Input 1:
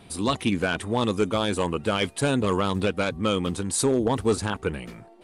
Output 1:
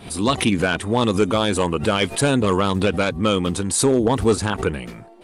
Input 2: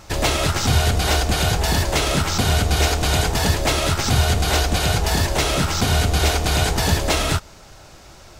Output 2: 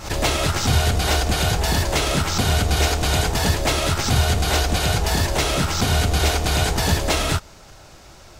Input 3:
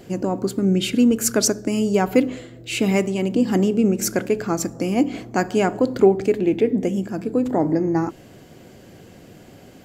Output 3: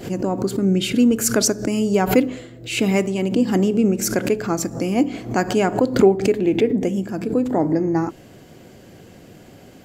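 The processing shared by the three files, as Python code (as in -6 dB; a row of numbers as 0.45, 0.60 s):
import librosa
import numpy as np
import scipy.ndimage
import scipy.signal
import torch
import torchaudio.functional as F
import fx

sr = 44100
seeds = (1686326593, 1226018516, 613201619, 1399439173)

y = fx.pre_swell(x, sr, db_per_s=140.0)
y = y * 10.0 ** (-20 / 20.0) / np.sqrt(np.mean(np.square(y)))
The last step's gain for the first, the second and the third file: +5.0, -1.0, +0.5 dB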